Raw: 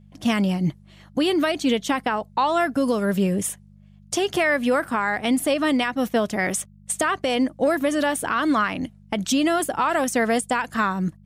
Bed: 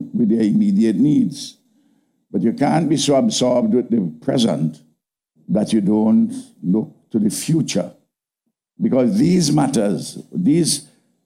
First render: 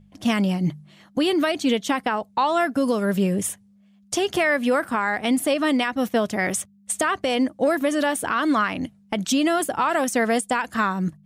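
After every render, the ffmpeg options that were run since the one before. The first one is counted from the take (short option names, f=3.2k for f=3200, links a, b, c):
-af "bandreject=f=50:t=h:w=4,bandreject=f=100:t=h:w=4,bandreject=f=150:t=h:w=4"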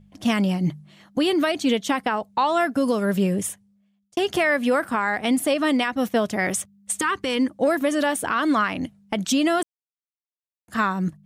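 -filter_complex "[0:a]asettb=1/sr,asplit=3[a][b][c];[a]atrim=end=7.004[d];[b]atrim=start=7:end=7.51,asetpts=PTS-STARTPTS,afade=t=in:d=0.004:c=qsin,afade=t=out:st=0.506:d=0.004:c=qsin,asuperstop=centerf=660:order=4:qfactor=2[e];[c]atrim=start=7.506[f];[d][e]acrossfade=d=0.004:c1=hsin:c2=qsin[g];[g][f]acrossfade=d=0.004:c1=qsin:c2=hsin,asplit=4[h][i][j][k];[h]atrim=end=4.17,asetpts=PTS-STARTPTS,afade=t=out:st=3.31:d=0.86[l];[i]atrim=start=4.17:end=9.63,asetpts=PTS-STARTPTS,afade=t=in:d=0.004:c=hsin,afade=t=out:st=5.456:d=0.004:c=hsin[m];[j]atrim=start=9.63:end=10.68,asetpts=PTS-STARTPTS,volume=0[n];[k]atrim=start=10.68,asetpts=PTS-STARTPTS,afade=t=in:d=0.004:c=hsin[o];[l][m][n][o]concat=n=4:v=0:a=1"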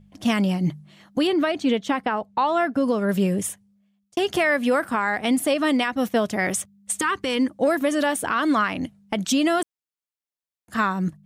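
-filter_complex "[0:a]asettb=1/sr,asplit=3[a][b][c];[a]atrim=end=1.274[d];[b]atrim=start=1.27:end=3.09,asetpts=PTS-STARTPTS,afade=t=in:d=0.004:c=qsin,afade=t=out:st=1.816:d=0.004:c=qsin,lowpass=f=2.7k:p=1[e];[c]atrim=start=3.086[f];[d][e]acrossfade=d=0.004:c1=hsin:c2=qsin[g];[g][f]acrossfade=d=0.004:c1=qsin:c2=hsin"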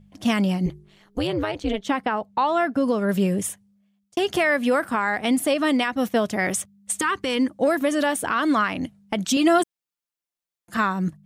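-filter_complex "[0:a]asettb=1/sr,asplit=3[a][b][c];[a]atrim=end=0.664[d];[b]atrim=start=0.66:end=1.85,asetpts=PTS-STARTPTS,afade=t=in:d=0.004:c=qsin,afade=t=out:st=1.186:d=0.004:c=qsin,tremolo=f=210:d=0.919[e];[c]atrim=start=1.846[f];[d][e]acrossfade=d=0.004:c1=hsin:c2=qsin[g];[g][f]acrossfade=d=0.004:c1=qsin:c2=hsin,asettb=1/sr,asplit=3[h][i][j];[h]atrim=end=9.364[k];[i]atrim=start=9.36:end=10.77,asetpts=PTS-STARTPTS,afade=t=in:d=0.004:c=qsin,afade=t=out:st=1.406:d=0.004:c=qsin,aecho=1:1:5.8:0.72,atrim=end_sample=62181[l];[j]atrim=start=10.766[m];[k][l]acrossfade=d=0.004:c1=hsin:c2=qsin[n];[n][m]acrossfade=d=0.004:c1=qsin:c2=hsin"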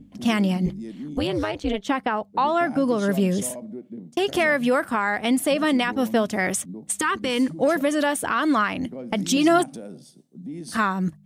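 -filter_complex "[1:a]volume=-20dB[a];[0:a][a]amix=inputs=2:normalize=0"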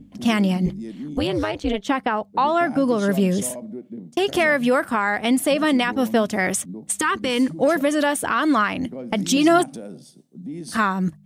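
-af "volume=2dB"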